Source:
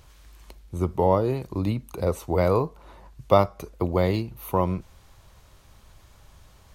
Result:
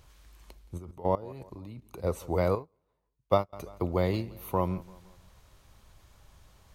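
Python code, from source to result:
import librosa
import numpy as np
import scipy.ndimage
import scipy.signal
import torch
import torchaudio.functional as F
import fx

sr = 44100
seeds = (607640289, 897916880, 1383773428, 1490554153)

p1 = fx.level_steps(x, sr, step_db=19, at=(0.77, 2.03), fade=0.02)
p2 = p1 + fx.echo_feedback(p1, sr, ms=171, feedback_pct=47, wet_db=-21, dry=0)
p3 = fx.upward_expand(p2, sr, threshold_db=-32.0, expansion=2.5, at=(2.55, 3.53))
y = p3 * librosa.db_to_amplitude(-5.0)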